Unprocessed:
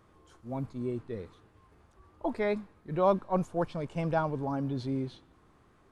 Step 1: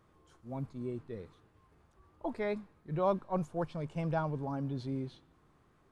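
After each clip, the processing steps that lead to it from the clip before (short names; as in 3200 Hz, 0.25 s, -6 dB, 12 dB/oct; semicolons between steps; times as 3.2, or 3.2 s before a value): bell 150 Hz +6 dB 0.22 oct; gain -5 dB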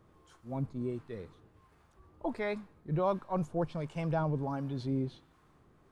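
in parallel at -2 dB: limiter -29 dBFS, peak gain reduction 10.5 dB; on the sum: harmonic tremolo 1.4 Hz, depth 50%, crossover 740 Hz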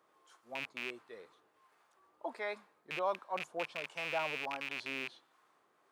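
rattling part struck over -35 dBFS, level -26 dBFS; HPF 610 Hz 12 dB/oct; gain -1 dB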